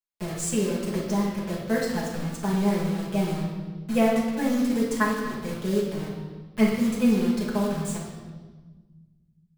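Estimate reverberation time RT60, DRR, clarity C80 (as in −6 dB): 1.4 s, −6.5 dB, 4.0 dB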